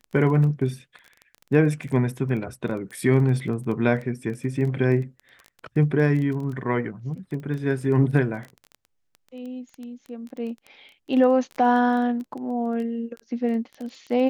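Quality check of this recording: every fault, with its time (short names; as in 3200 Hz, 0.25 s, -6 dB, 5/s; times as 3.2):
crackle 14/s -31 dBFS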